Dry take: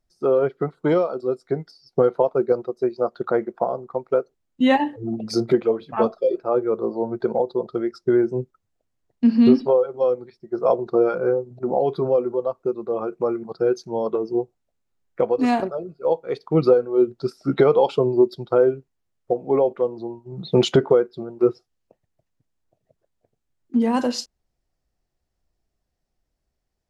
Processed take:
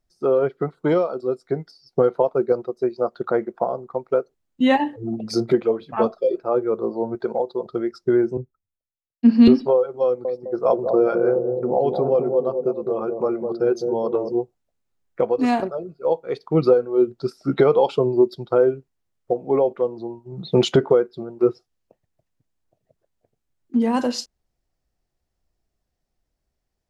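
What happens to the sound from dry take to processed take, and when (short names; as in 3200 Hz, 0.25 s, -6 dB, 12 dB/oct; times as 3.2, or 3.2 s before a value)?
7.15–7.66 low shelf 250 Hz -8.5 dB
8.37–9.48 three-band expander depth 100%
10.04–14.32 analogue delay 0.207 s, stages 1024, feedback 48%, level -5 dB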